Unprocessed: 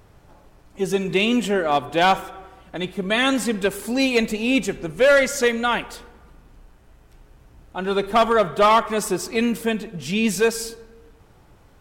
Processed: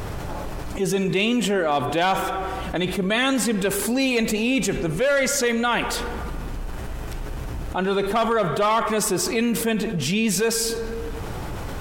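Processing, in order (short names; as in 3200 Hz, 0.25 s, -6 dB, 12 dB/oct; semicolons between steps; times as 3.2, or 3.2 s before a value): fast leveller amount 70%; gain -6 dB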